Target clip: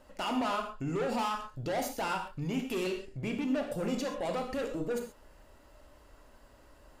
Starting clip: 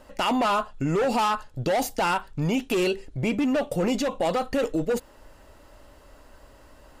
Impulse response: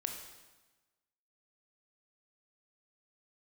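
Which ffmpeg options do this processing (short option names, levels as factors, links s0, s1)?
-filter_complex "[0:a]asoftclip=type=tanh:threshold=0.1[s0];[1:a]atrim=start_sample=2205,atrim=end_sample=6174[s1];[s0][s1]afir=irnorm=-1:irlink=0,volume=0.473"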